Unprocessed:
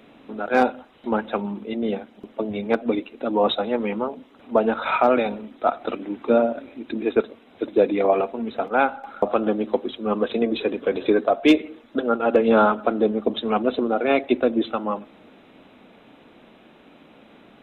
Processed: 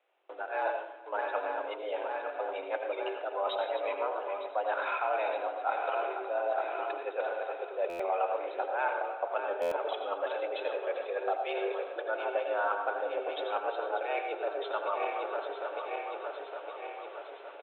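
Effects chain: backward echo that repeats 456 ms, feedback 74%, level -12 dB; gate with hold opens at -33 dBFS; reverse; compression 6:1, threshold -27 dBFS, peak gain reduction 15.5 dB; reverse; delay 385 ms -21.5 dB; on a send at -5 dB: reverberation RT60 0.50 s, pre-delay 76 ms; on the sum: mistuned SSB +78 Hz 430–3300 Hz; buffer glitch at 7.89/9.61 s, samples 512, times 8; trim -1 dB

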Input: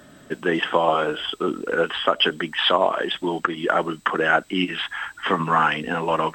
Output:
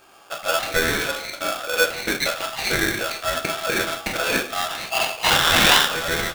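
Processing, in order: rattle on loud lows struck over -38 dBFS, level -15 dBFS; 4.90–5.86 s: high-order bell 2.3 kHz +15.5 dB 1.1 oct; on a send: delay 171 ms -21 dB; on the sum: simulated room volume 38 m³, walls mixed, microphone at 0.63 m; polarity switched at an audio rate 990 Hz; trim -6.5 dB

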